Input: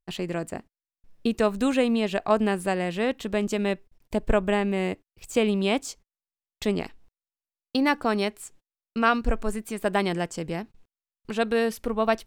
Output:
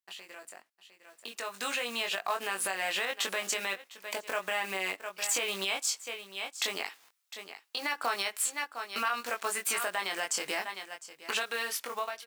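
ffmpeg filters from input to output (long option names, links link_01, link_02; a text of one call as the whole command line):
ffmpeg -i in.wav -filter_complex "[0:a]aecho=1:1:705:0.0631,acompressor=threshold=-32dB:ratio=6,acrusher=bits=7:mode=log:mix=0:aa=0.000001,highpass=1100,asplit=2[link_01][link_02];[link_02]adelay=21,volume=-4dB[link_03];[link_01][link_03]amix=inputs=2:normalize=0,alimiter=level_in=10.5dB:limit=-24dB:level=0:latency=1:release=117,volume=-10.5dB,dynaudnorm=framelen=270:gausssize=11:maxgain=15.5dB" out.wav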